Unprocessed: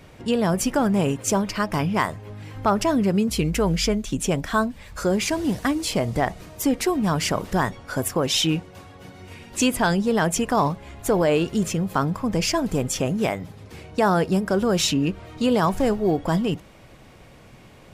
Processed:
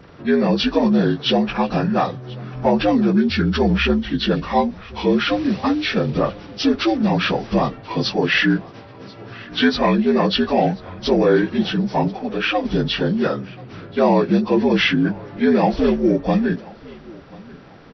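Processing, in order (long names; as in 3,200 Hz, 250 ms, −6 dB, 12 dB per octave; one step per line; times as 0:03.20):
partials spread apart or drawn together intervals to 77%
0:12.08–0:12.65: bass and treble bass −13 dB, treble −5 dB
repeating echo 1,036 ms, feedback 28%, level −22.5 dB
level +5.5 dB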